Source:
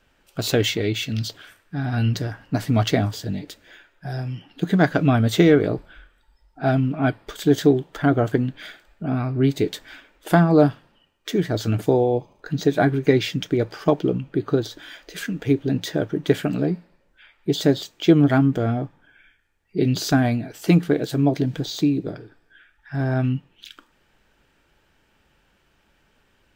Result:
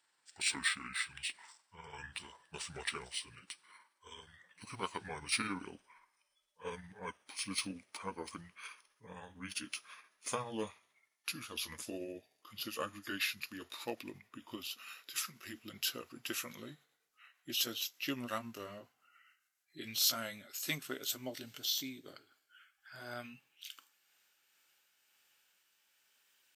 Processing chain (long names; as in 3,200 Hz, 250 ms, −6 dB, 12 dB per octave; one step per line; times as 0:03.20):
pitch glide at a constant tempo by −9.5 semitones ending unshifted
first difference
level +2.5 dB